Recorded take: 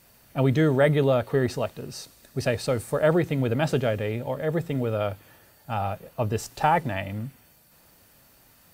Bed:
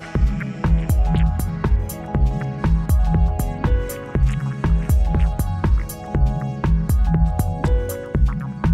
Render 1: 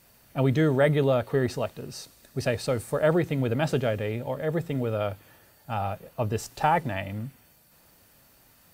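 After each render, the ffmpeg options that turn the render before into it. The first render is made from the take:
-af "volume=0.841"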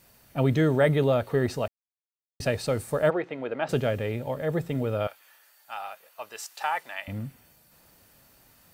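-filter_complex "[0:a]asplit=3[s0][s1][s2];[s0]afade=t=out:st=3.09:d=0.02[s3];[s1]highpass=420,lowpass=2500,afade=t=in:st=3.09:d=0.02,afade=t=out:st=3.68:d=0.02[s4];[s2]afade=t=in:st=3.68:d=0.02[s5];[s3][s4][s5]amix=inputs=3:normalize=0,asettb=1/sr,asplit=3[s6][s7][s8];[s6]atrim=end=5.074[s9];[s7]atrim=start=5.07:end=7.08,asetpts=PTS-STARTPTS,afade=t=in:d=0.004:c=qsin,afade=t=out:st=2.006:d=0.004:c=qsin,highpass=1100[s10];[s8]atrim=start=7.076[s11];[s9][s10]acrossfade=d=0.004:c1=hsin:c2=qsin[s12];[s12][s11]acrossfade=d=0.004:c1=qsin:c2=hsin,asplit=3[s13][s14][s15];[s13]atrim=end=1.68,asetpts=PTS-STARTPTS,afade=t=out:st=1.676:d=0.004:c=hsin[s16];[s14]atrim=start=1.68:end=2.4,asetpts=PTS-STARTPTS,volume=0[s17];[s15]atrim=start=2.4,asetpts=PTS-STARTPTS,afade=t=in:d=0.004:c=hsin[s18];[s16][s17][s18]concat=n=3:v=0:a=1"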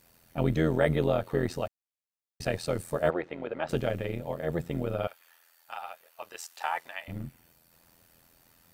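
-af "tremolo=f=84:d=0.824"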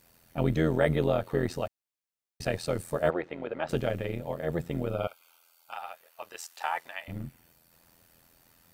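-filter_complex "[0:a]asettb=1/sr,asplit=3[s0][s1][s2];[s0]atrim=end=4.904[s3];[s1]atrim=start=4.9:end=5.73,asetpts=PTS-STARTPTS,afade=t=in:d=0.004:c=qsin,afade=t=out:st=0.826:d=0.004:c=qsin,asuperstop=centerf=1800:order=8:qfactor=3.5[s4];[s2]atrim=start=5.726[s5];[s3][s4]acrossfade=d=0.004:c1=hsin:c2=qsin[s6];[s6][s5]acrossfade=d=0.004:c1=qsin:c2=hsin"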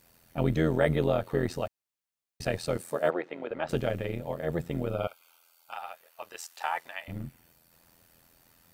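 -filter_complex "[0:a]asettb=1/sr,asplit=3[s0][s1][s2];[s0]atrim=end=2.774[s3];[s1]atrim=start=2.77:end=3.51,asetpts=PTS-STARTPTS,afade=t=in:d=0.004:c=qsin,afade=t=out:st=0.736:d=0.004:c=qsin,highpass=220[s4];[s2]atrim=start=3.506[s5];[s3][s4]acrossfade=d=0.004:c1=hsin:c2=qsin[s6];[s6][s5]acrossfade=d=0.004:c1=qsin:c2=hsin"

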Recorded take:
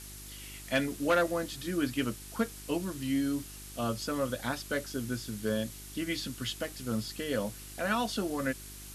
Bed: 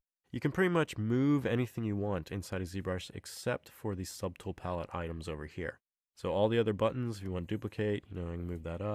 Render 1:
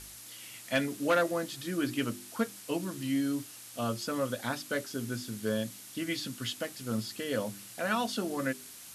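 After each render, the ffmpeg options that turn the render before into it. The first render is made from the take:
-af "bandreject=f=50:t=h:w=4,bandreject=f=100:t=h:w=4,bandreject=f=150:t=h:w=4,bandreject=f=200:t=h:w=4,bandreject=f=250:t=h:w=4,bandreject=f=300:t=h:w=4,bandreject=f=350:t=h:w=4,bandreject=f=400:t=h:w=4"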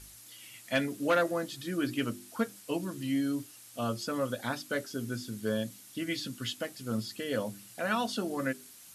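-af "afftdn=nr=6:nf=-49"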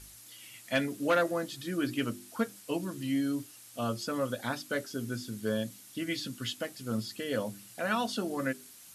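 -af anull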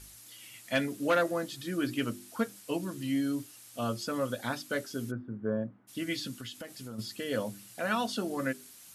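-filter_complex "[0:a]asplit=3[s0][s1][s2];[s0]afade=t=out:st=5.1:d=0.02[s3];[s1]lowpass=f=1400:w=0.5412,lowpass=f=1400:w=1.3066,afade=t=in:st=5.1:d=0.02,afade=t=out:st=5.87:d=0.02[s4];[s2]afade=t=in:st=5.87:d=0.02[s5];[s3][s4][s5]amix=inputs=3:normalize=0,asplit=3[s6][s7][s8];[s6]afade=t=out:st=6.37:d=0.02[s9];[s7]acompressor=threshold=0.0126:ratio=6:attack=3.2:release=140:knee=1:detection=peak,afade=t=in:st=6.37:d=0.02,afade=t=out:st=6.98:d=0.02[s10];[s8]afade=t=in:st=6.98:d=0.02[s11];[s9][s10][s11]amix=inputs=3:normalize=0"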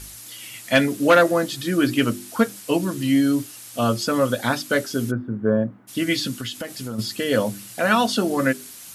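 -af "volume=3.98"

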